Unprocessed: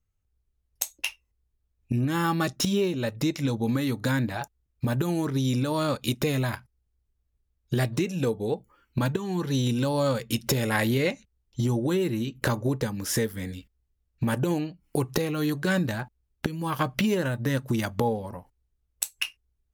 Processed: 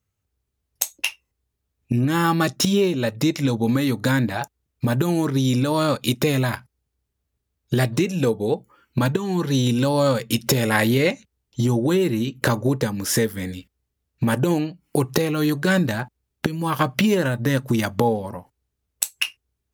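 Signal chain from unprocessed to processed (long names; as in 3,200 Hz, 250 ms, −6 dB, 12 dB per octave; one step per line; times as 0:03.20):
high-pass filter 95 Hz
level +6 dB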